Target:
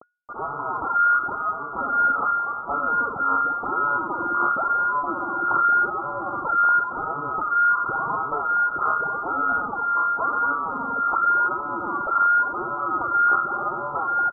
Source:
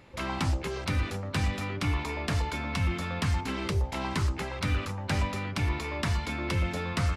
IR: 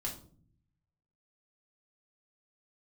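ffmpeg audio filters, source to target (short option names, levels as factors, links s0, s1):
-filter_complex "[0:a]aphaser=in_gain=1:out_gain=1:delay=3.5:decay=0.73:speed=1.8:type=sinusoidal,acrossover=split=140|1300[s0][s1][s2];[s2]alimiter=level_in=1.06:limit=0.0631:level=0:latency=1:release=384,volume=0.944[s3];[s0][s1][s3]amix=inputs=3:normalize=0,dynaudnorm=f=180:g=3:m=2,aresample=8000,asoftclip=type=tanh:threshold=0.168,aresample=44100,acrusher=bits=5:mix=0:aa=0.000001,equalizer=f=190:t=o:w=0.77:g=-4,lowpass=f=2500:t=q:w=0.5098,lowpass=f=2500:t=q:w=0.6013,lowpass=f=2500:t=q:w=0.9,lowpass=f=2500:t=q:w=2.563,afreqshift=-2900,asetrate=22050,aresample=44100"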